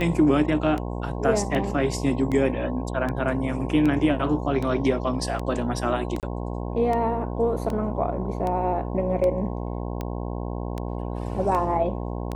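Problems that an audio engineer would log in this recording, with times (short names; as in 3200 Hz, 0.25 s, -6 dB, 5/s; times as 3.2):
buzz 60 Hz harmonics 18 -30 dBFS
tick 78 rpm -17 dBFS
6.2–6.23 gap 28 ms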